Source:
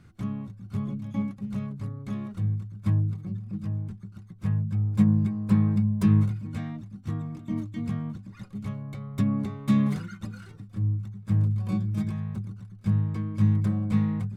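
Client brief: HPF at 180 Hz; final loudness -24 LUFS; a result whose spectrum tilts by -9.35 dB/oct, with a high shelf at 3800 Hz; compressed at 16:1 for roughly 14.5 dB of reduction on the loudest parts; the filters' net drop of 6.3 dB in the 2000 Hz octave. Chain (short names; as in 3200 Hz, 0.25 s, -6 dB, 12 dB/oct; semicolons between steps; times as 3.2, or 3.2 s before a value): HPF 180 Hz; bell 2000 Hz -7 dB; high shelf 3800 Hz -4 dB; compressor 16:1, threshold -33 dBFS; gain +15.5 dB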